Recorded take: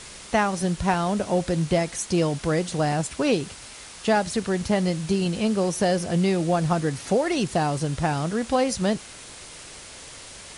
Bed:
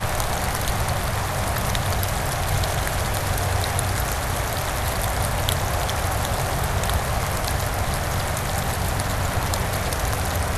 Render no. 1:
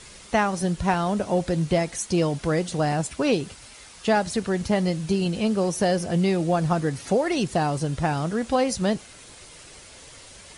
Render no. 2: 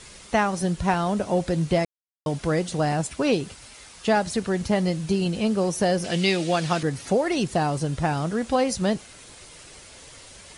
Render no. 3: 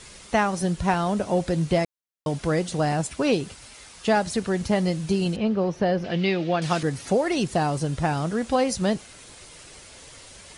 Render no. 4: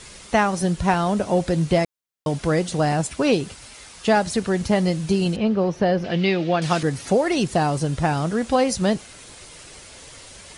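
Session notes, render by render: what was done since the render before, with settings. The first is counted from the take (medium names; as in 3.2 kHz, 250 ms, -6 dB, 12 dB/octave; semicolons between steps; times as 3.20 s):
noise reduction 6 dB, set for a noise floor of -43 dBFS
1.85–2.26 s: mute; 6.04–6.83 s: frequency weighting D
5.36–6.62 s: distance through air 250 m
trim +3 dB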